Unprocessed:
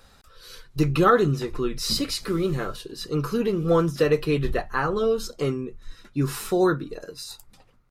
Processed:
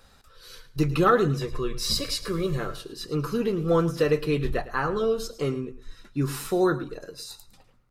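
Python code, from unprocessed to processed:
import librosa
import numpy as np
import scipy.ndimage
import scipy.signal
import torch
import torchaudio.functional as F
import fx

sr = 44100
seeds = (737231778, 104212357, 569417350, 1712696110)

p1 = fx.comb(x, sr, ms=1.8, depth=0.57, at=(1.36, 2.58))
p2 = p1 + fx.echo_feedback(p1, sr, ms=108, feedback_pct=22, wet_db=-15.5, dry=0)
y = F.gain(torch.from_numpy(p2), -2.0).numpy()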